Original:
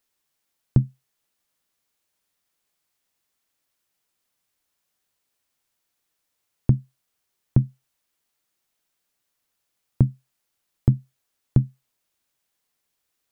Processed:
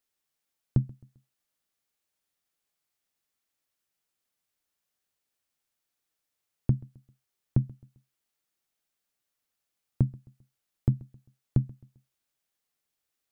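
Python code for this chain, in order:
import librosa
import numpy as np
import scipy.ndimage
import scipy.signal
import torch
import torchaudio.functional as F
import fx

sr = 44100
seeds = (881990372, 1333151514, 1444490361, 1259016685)

p1 = fx.notch(x, sr, hz=990.0, q=17.0)
p2 = p1 + fx.echo_feedback(p1, sr, ms=132, feedback_pct=40, wet_db=-23.0, dry=0)
y = p2 * librosa.db_to_amplitude(-6.5)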